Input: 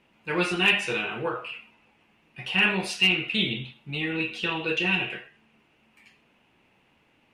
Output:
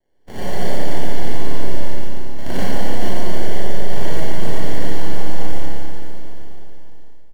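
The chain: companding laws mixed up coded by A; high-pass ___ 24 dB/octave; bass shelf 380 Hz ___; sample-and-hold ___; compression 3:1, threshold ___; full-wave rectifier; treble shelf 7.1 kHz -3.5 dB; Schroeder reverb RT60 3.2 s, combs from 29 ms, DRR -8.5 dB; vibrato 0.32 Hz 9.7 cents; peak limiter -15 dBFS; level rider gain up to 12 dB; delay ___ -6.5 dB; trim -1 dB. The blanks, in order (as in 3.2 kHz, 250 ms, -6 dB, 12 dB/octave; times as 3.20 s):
290 Hz, +7.5 dB, 35×, -36 dBFS, 142 ms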